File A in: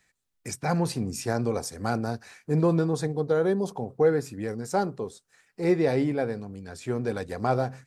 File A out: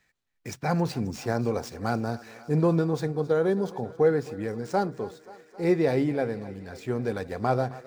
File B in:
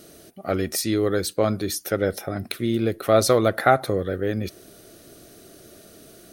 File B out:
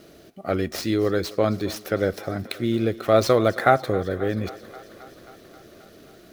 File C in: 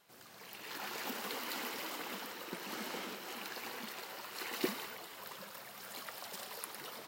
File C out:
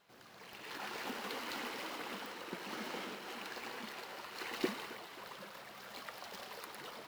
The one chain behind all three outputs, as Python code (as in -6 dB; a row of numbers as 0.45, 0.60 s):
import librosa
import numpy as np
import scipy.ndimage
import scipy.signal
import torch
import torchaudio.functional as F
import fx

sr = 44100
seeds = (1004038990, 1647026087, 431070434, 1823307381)

y = scipy.ndimage.median_filter(x, 5, mode='constant')
y = fx.echo_thinned(y, sr, ms=267, feedback_pct=75, hz=280.0, wet_db=-18)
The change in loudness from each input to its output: 0.0, -0.5, -1.5 LU